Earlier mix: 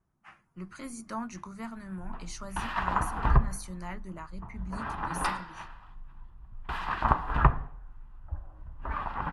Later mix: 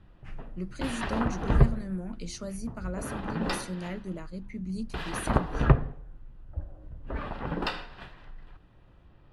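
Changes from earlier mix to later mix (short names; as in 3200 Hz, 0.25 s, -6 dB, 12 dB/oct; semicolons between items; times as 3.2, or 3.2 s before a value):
background: entry -1.75 s; master: add graphic EQ 125/250/500/1000/4000 Hz +4/+5/+11/-11/+5 dB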